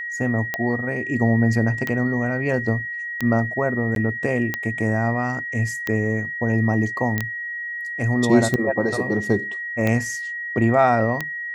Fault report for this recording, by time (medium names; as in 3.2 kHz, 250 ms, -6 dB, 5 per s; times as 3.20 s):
tick 45 rpm -9 dBFS
whine 1.9 kHz -27 dBFS
3.95–3.96 s: dropout 12 ms
7.18 s: pop -9 dBFS